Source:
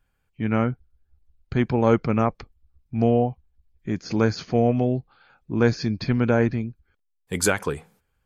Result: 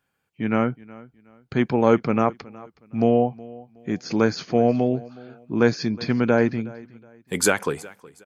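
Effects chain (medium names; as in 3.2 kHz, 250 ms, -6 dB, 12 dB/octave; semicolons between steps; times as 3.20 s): high-pass 160 Hz 12 dB/octave; on a send: feedback delay 368 ms, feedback 29%, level -21 dB; on the sum: trim +2 dB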